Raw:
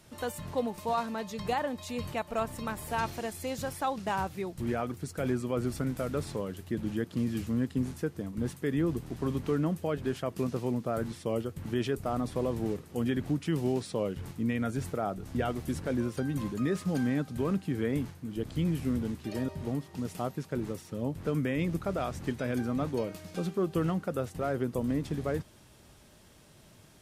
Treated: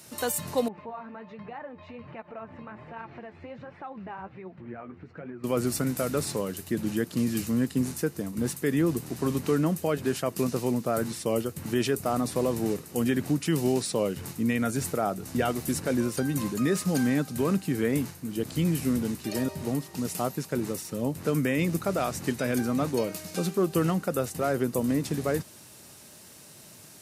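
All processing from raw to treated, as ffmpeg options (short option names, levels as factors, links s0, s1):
-filter_complex "[0:a]asettb=1/sr,asplit=3[s0][s1][s2];[s0]atrim=end=0.684[s3];[s1]atrim=start=0.68:end=5.44,asetpts=PTS-STARTPTS,afade=t=in:d=0.004:c=qsin,afade=t=out:st=4.756:d=0.004:c=qsin,lowpass=f=2300:w=0.5412,lowpass=f=2300:w=1.3066,acompressor=threshold=0.01:ratio=3:attack=3.2:release=140:knee=1:detection=peak,flanger=delay=4:depth=8.8:regen=44:speed=1.3:shape=triangular[s4];[s2]atrim=start=5.436[s5];[s3][s4]acrossfade=d=0.004:c1=hsin:c2=qsin[s6];[s6][s5]acrossfade=d=0.004:c1=qsin:c2=hsin,highpass=120,highshelf=f=4600:g=12,bandreject=f=3300:w=11,volume=1.68"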